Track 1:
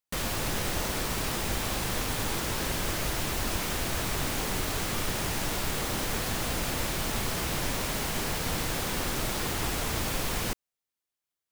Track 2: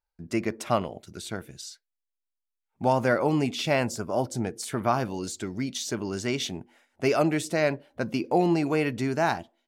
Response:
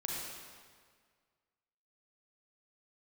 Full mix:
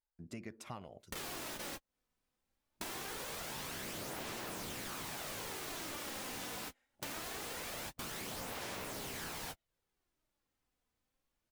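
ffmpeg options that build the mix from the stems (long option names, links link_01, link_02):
-filter_complex "[0:a]adelay=1000,volume=-0.5dB[link_01];[1:a]volume=-13dB,asplit=2[link_02][link_03];[link_03]apad=whole_len=551946[link_04];[link_01][link_04]sidechaingate=range=-56dB:threshold=-58dB:ratio=16:detection=peak[link_05];[link_05][link_02]amix=inputs=2:normalize=0,afftfilt=real='re*lt(hypot(re,im),0.112)':imag='im*lt(hypot(re,im),0.112)':win_size=1024:overlap=0.75,aphaser=in_gain=1:out_gain=1:delay=4:decay=0.34:speed=0.23:type=sinusoidal,acompressor=threshold=-43dB:ratio=4"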